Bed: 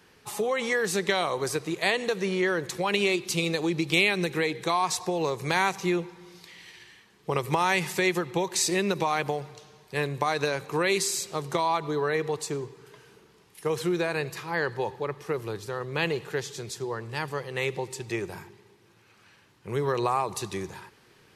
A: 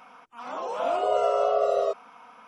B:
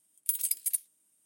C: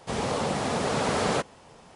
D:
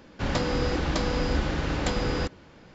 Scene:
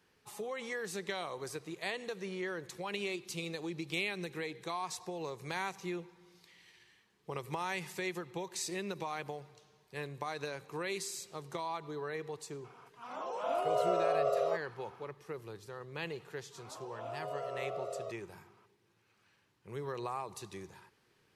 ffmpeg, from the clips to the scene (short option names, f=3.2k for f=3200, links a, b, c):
-filter_complex "[1:a]asplit=2[a][b];[0:a]volume=-13dB[c];[a]atrim=end=2.47,asetpts=PTS-STARTPTS,volume=-7.5dB,afade=t=in:d=0.004:c=hsin,afade=t=out:st=2.466:d=0.004:c=hsin,adelay=12640[d];[b]atrim=end=2.47,asetpts=PTS-STARTPTS,volume=-17dB,afade=t=in:d=0.004:c=hsin,afade=t=out:st=2.466:d=0.004:c=hsin,adelay=16190[e];[c][d][e]amix=inputs=3:normalize=0"